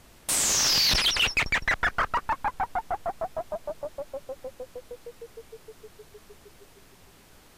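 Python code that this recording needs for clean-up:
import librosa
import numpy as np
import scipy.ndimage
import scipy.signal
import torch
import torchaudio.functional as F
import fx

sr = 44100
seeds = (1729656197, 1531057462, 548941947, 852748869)

y = fx.noise_reduce(x, sr, print_start_s=7.06, print_end_s=7.56, reduce_db=18.0)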